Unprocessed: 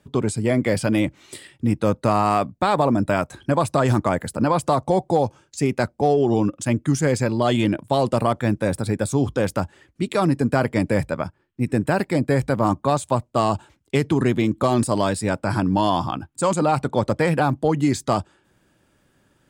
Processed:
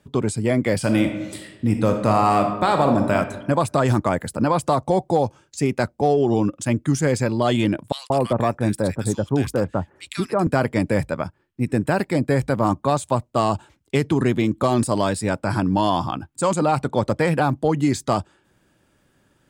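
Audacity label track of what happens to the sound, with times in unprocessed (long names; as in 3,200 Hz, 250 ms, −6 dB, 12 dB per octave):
0.780000	3.150000	thrown reverb, RT60 1.1 s, DRR 4.5 dB
7.920000	10.470000	multiband delay without the direct sound highs, lows 180 ms, split 1,600 Hz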